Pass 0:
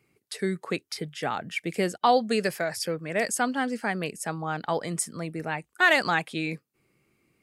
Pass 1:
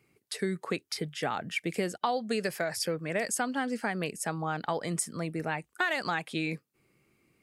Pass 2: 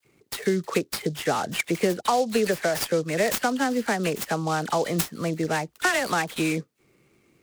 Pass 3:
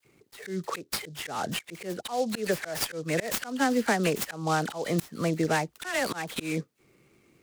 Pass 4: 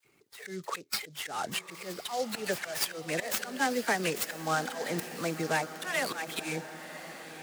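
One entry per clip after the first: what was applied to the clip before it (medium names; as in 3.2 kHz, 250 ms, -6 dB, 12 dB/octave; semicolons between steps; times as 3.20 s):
compression 6:1, threshold -26 dBFS, peak gain reduction 11 dB
peaking EQ 440 Hz +3.5 dB 1.5 oct; phase dispersion lows, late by 49 ms, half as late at 2.6 kHz; delay time shaken by noise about 5 kHz, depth 0.033 ms; trim +5.5 dB
slow attack 201 ms
coarse spectral quantiser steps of 15 dB; bass shelf 480 Hz -9.5 dB; echo that smears into a reverb 1057 ms, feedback 51%, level -12 dB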